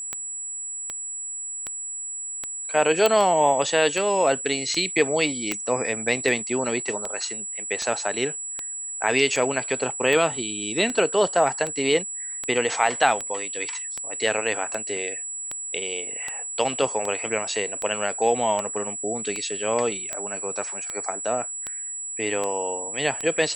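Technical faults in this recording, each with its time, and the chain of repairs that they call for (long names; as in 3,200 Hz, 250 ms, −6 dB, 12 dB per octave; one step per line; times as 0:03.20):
scratch tick 78 rpm −14 dBFS
whistle 7,800 Hz −30 dBFS
0:03.06: click −5 dBFS
0:05.52: click −9 dBFS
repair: click removal
notch filter 7,800 Hz, Q 30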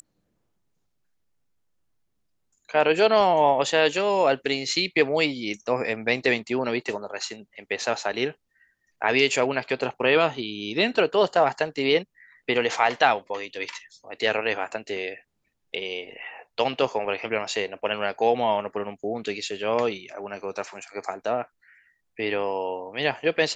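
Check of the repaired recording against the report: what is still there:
none of them is left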